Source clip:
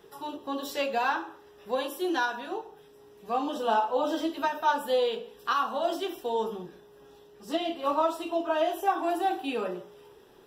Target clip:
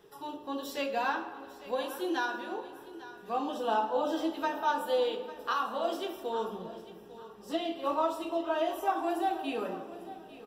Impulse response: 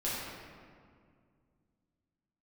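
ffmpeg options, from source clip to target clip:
-filter_complex "[0:a]aecho=1:1:849|1698|2547:0.158|0.046|0.0133,asplit=2[a][b];[1:a]atrim=start_sample=2205,lowshelf=f=210:g=6.5[c];[b][c]afir=irnorm=-1:irlink=0,volume=-15.5dB[d];[a][d]amix=inputs=2:normalize=0,volume=-5dB"

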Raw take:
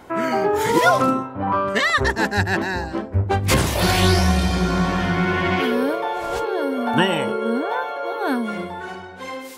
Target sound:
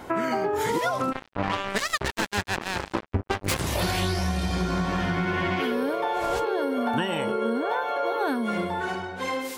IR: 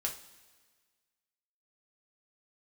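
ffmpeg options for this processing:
-filter_complex "[0:a]acompressor=threshold=-25dB:ratio=16,asplit=3[a][b][c];[a]afade=t=out:st=1.11:d=0.02[d];[b]acrusher=bits=3:mix=0:aa=0.5,afade=t=in:st=1.11:d=0.02,afade=t=out:st=3.59:d=0.02[e];[c]afade=t=in:st=3.59:d=0.02[f];[d][e][f]amix=inputs=3:normalize=0,volume=3dB"

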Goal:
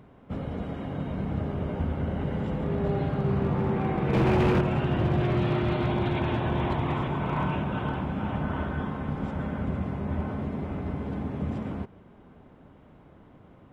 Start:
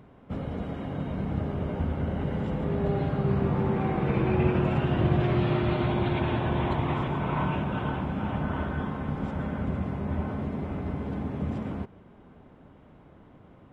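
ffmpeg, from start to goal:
-filter_complex "[0:a]asettb=1/sr,asplit=3[a][b][c];[a]atrim=end=4.134[d];[b]atrim=start=4.13:end=4.61,asetpts=PTS-STARTPTS,afade=t=in:d=0.004:c=qsin,afade=t=out:st=0.476:d=0.004:c=qsin,acontrast=66[e];[c]atrim=start=4.606[f];[d][e]acrossfade=d=0.004:c1=hsin:c2=qsin[g];[g][f]acrossfade=d=0.004:c1=qsin:c2=hsin,asoftclip=type=hard:threshold=-19dB"

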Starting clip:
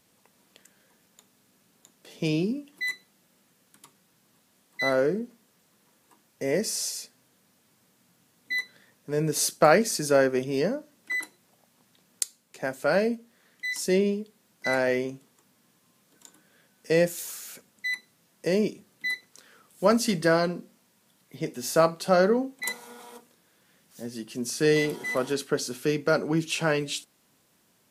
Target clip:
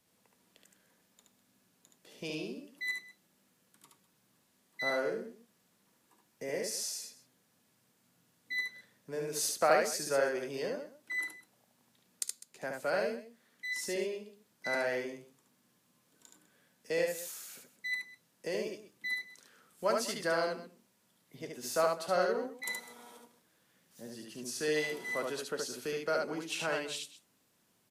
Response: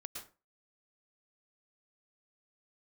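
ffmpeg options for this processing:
-filter_complex "[0:a]acrossover=split=400|460|6600[a][b][c][d];[a]acompressor=threshold=-39dB:ratio=6[e];[e][b][c][d]amix=inputs=4:normalize=0,aecho=1:1:56|72|202:0.133|0.708|0.15,volume=-8.5dB"

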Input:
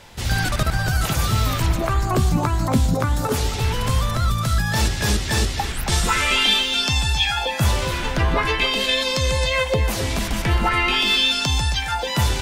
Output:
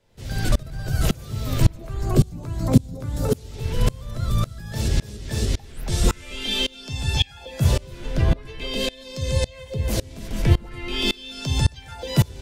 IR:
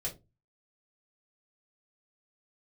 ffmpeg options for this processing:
-filter_complex "[0:a]lowshelf=f=690:t=q:w=1.5:g=6.5,acrossover=split=250|3000[a][b][c];[b]acompressor=threshold=-26dB:ratio=2.5[d];[a][d][c]amix=inputs=3:normalize=0,asplit=2[e][f];[1:a]atrim=start_sample=2205,asetrate=38367,aresample=44100[g];[f][g]afir=irnorm=-1:irlink=0,volume=-10.5dB[h];[e][h]amix=inputs=2:normalize=0,aeval=exprs='val(0)*pow(10,-27*if(lt(mod(-1.8*n/s,1),2*abs(-1.8)/1000),1-mod(-1.8*n/s,1)/(2*abs(-1.8)/1000),(mod(-1.8*n/s,1)-2*abs(-1.8)/1000)/(1-2*abs(-1.8)/1000))/20)':c=same,volume=-1dB"

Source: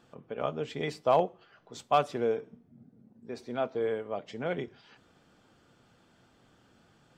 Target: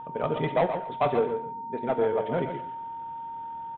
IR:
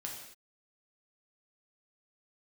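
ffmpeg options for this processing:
-filter_complex "[0:a]aresample=8000,asoftclip=type=tanh:threshold=-24.5dB,aresample=44100,aeval=exprs='val(0)+0.00708*sin(2*PI*920*n/s)':c=same,aemphasis=mode=reproduction:type=75fm,aecho=1:1:250|500|750:0.398|0.0796|0.0159,asplit=2[a][b];[1:a]atrim=start_sample=2205[c];[b][c]afir=irnorm=-1:irlink=0,volume=-2dB[d];[a][d]amix=inputs=2:normalize=0,atempo=1.9,volume=3.5dB"

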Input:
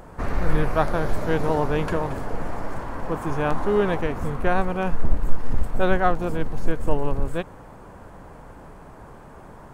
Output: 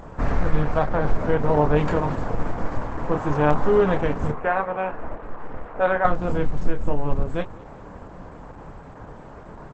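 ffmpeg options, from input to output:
-filter_complex "[0:a]asettb=1/sr,asplit=3[a][b][c];[a]atrim=end=0.844[d];[b]atrim=start=0.84:end=1.77,asetpts=PTS-STARTPTS,afade=t=in:d=0.004:c=qsin,afade=t=out:st=0.926:d=0.004:c=qsin,acrossover=split=3100[e][f];[f]acompressor=threshold=-54dB:ratio=4:attack=1:release=60[g];[e][g]amix=inputs=2:normalize=0[h];[c]atrim=start=1.766[i];[d][h]acrossfade=d=0.004:c1=hsin:c2=qsin[j];[j][i]acrossfade=d=0.004:c1=qsin:c2=hsin,asettb=1/sr,asplit=3[k][l][m];[k]atrim=end=4.314[n];[l]atrim=start=4.31:end=6.05,asetpts=PTS-STARTPTS,afade=t=in:d=0.004:c=qsin,afade=t=out:st=1.736:d=0.004:c=qsin,acrossover=split=330 2800:gain=0.1 1 0.0794[o][p][q];[o][p][q]amix=inputs=3:normalize=0[r];[m]atrim=start=6.046[s];[n][r]acrossfade=d=0.004:c1=hsin:c2=qsin[t];[t][s]acrossfade=d=0.004:c1=qsin:c2=hsin,bandreject=f=370:w=12,alimiter=limit=-12dB:level=0:latency=1:release=314,highshelf=f=3.3k:g=-6,asplit=2[u][v];[v]adelay=27,volume=-7dB[w];[u][w]amix=inputs=2:normalize=0,aecho=1:1:198|396|594:0.0668|0.0307|0.0141,aresample=22050,aresample=44100,volume=3.5dB" -ar 48000 -c:a libopus -b:a 12k

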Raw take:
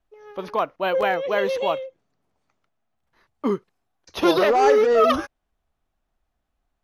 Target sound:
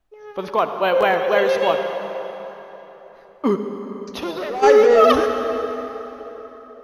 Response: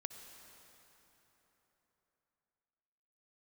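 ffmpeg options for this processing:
-filter_complex "[0:a]asplit=3[a][b][c];[a]afade=t=out:st=3.55:d=0.02[d];[b]acompressor=threshold=-36dB:ratio=2.5,afade=t=in:st=3.55:d=0.02,afade=t=out:st=4.62:d=0.02[e];[c]afade=t=in:st=4.62:d=0.02[f];[d][e][f]amix=inputs=3:normalize=0[g];[1:a]atrim=start_sample=2205[h];[g][h]afir=irnorm=-1:irlink=0,volume=7.5dB"

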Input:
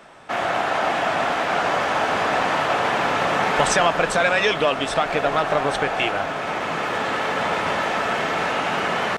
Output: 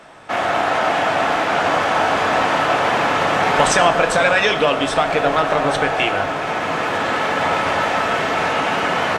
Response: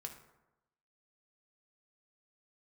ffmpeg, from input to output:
-filter_complex "[0:a]asplit=2[a][b];[1:a]atrim=start_sample=2205,asetrate=28665,aresample=44100[c];[b][c]afir=irnorm=-1:irlink=0,volume=5dB[d];[a][d]amix=inputs=2:normalize=0,volume=-4dB"

